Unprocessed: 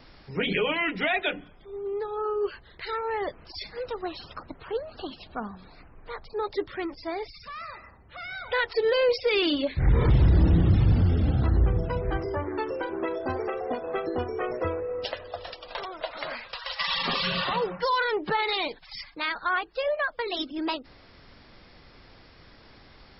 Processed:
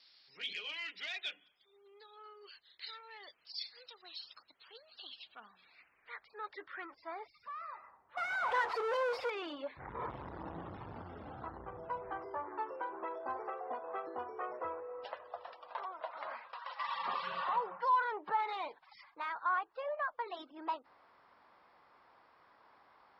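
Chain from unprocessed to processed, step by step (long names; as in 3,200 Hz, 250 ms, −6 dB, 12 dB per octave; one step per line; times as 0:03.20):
soft clipping −17 dBFS, distortion −16 dB
0:08.17–0:09.30: power curve on the samples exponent 0.35
band-pass filter sweep 4,300 Hz → 1,000 Hz, 0:04.71–0:07.46
level −2 dB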